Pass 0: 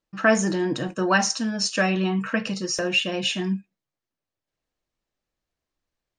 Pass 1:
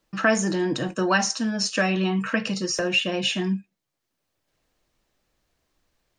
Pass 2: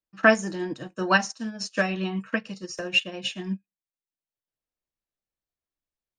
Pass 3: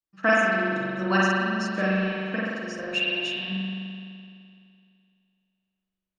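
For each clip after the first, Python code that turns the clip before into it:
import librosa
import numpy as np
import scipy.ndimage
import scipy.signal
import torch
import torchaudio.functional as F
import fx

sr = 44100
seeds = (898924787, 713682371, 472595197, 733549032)

y1 = fx.band_squash(x, sr, depth_pct=40)
y2 = fx.upward_expand(y1, sr, threshold_db=-35.0, expansion=2.5)
y2 = y2 * 10.0 ** (4.0 / 20.0)
y3 = fx.rev_spring(y2, sr, rt60_s=2.4, pass_ms=(42,), chirp_ms=25, drr_db=-7.0)
y3 = y3 * 10.0 ** (-6.5 / 20.0)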